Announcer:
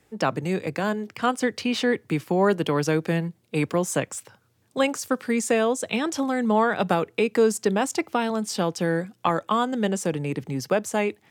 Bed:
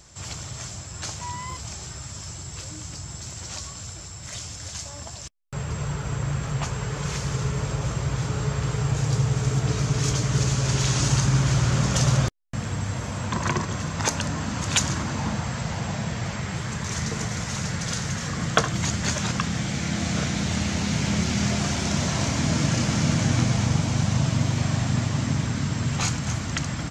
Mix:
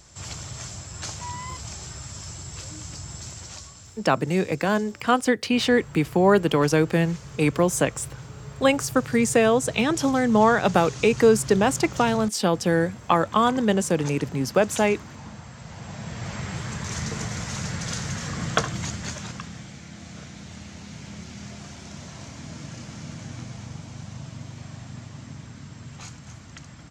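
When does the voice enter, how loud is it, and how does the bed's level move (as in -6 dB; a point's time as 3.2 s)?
3.85 s, +3.0 dB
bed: 3.26 s -1 dB
4.12 s -13.5 dB
15.56 s -13.5 dB
16.39 s -2 dB
18.55 s -2 dB
19.86 s -15.5 dB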